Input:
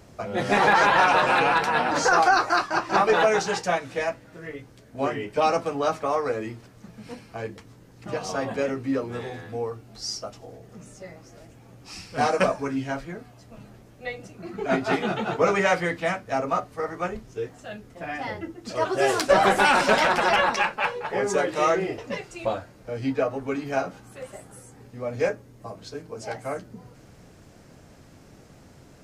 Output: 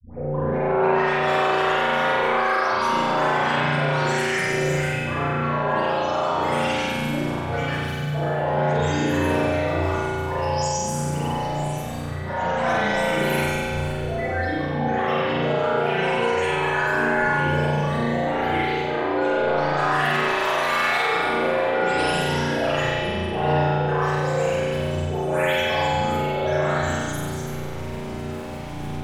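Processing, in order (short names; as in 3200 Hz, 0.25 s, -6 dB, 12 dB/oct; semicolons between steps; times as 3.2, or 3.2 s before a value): spectral delay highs late, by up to 0.874 s; in parallel at -5 dB: soft clip -21 dBFS, distortion -12 dB; on the sum: grains, pitch spread up and down by 7 st; reverse; compressor 12:1, threshold -38 dBFS, peak gain reduction 24.5 dB; reverse; flutter echo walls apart 8.1 m, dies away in 1.1 s; spring tank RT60 2.4 s, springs 34 ms, chirp 50 ms, DRR -8.5 dB; gain +7.5 dB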